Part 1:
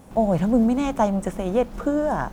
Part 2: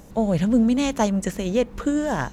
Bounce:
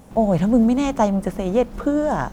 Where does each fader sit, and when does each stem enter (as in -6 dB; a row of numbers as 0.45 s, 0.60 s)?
0.0 dB, -8.5 dB; 0.00 s, 0.00 s